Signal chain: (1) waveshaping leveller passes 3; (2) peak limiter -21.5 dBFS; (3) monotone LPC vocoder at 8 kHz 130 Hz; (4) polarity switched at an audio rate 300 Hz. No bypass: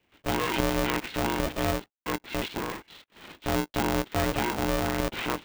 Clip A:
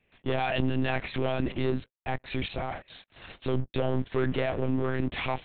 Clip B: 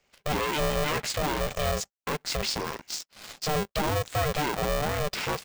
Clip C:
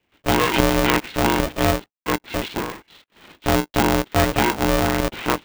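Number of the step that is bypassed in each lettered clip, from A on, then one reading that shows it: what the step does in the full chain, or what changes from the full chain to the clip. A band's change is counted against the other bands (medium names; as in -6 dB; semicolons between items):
4, 125 Hz band +6.0 dB; 3, 250 Hz band -6.5 dB; 2, mean gain reduction 5.5 dB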